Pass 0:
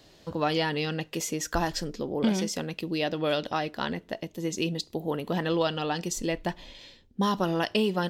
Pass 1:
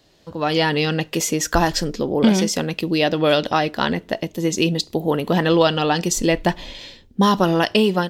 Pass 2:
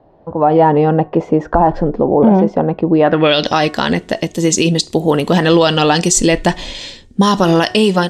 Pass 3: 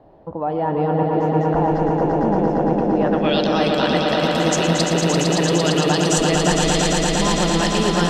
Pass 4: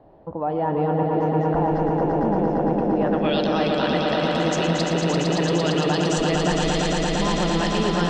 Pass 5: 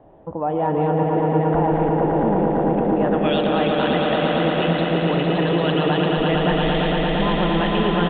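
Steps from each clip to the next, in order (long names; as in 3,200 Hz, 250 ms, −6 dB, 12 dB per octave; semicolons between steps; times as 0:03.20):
automatic gain control gain up to 14.5 dB; level −2 dB
hum removal 366.6 Hz, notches 6; low-pass filter sweep 820 Hz → 8,400 Hz, 0:02.96–0:03.57; boost into a limiter +8.5 dB; level −1 dB
reversed playback; downward compressor 6 to 1, threshold −20 dBFS, peak gain reduction 13 dB; reversed playback; echo that builds up and dies away 114 ms, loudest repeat 5, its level −5 dB
in parallel at −2.5 dB: brickwall limiter −12.5 dBFS, peak gain reduction 8 dB; on the sum: high-frequency loss of the air 86 metres; level −6.5 dB
far-end echo of a speakerphone 180 ms, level −8 dB; downsampling to 8,000 Hz; level +2 dB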